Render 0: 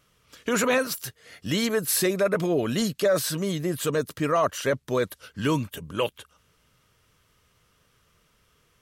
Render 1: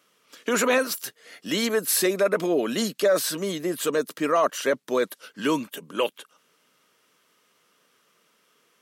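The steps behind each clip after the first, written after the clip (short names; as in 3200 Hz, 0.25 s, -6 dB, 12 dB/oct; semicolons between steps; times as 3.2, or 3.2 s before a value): HPF 220 Hz 24 dB/oct; gain +1.5 dB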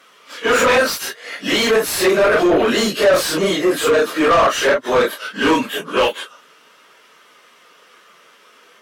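phase scrambler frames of 0.1 s; overdrive pedal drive 25 dB, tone 2300 Hz, clips at -6 dBFS; gain +1 dB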